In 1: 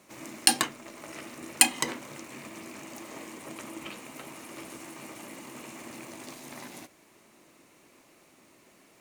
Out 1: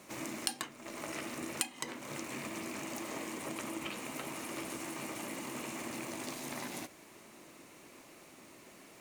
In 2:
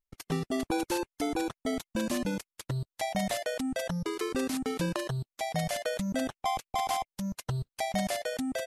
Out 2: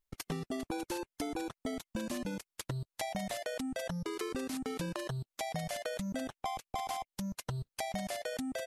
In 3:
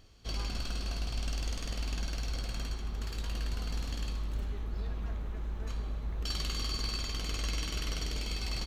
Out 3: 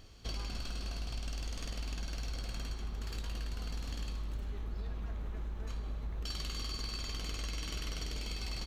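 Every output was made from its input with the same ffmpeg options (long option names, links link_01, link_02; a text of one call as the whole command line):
ffmpeg -i in.wav -af "acompressor=threshold=-40dB:ratio=4,volume=3.5dB" out.wav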